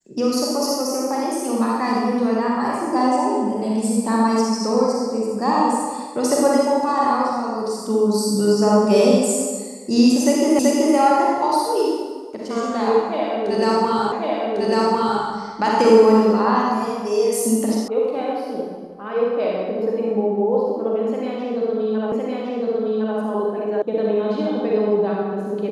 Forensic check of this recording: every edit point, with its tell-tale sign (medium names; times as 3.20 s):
10.59 s: repeat of the last 0.38 s
14.12 s: repeat of the last 1.1 s
17.88 s: sound stops dead
22.12 s: repeat of the last 1.06 s
23.82 s: sound stops dead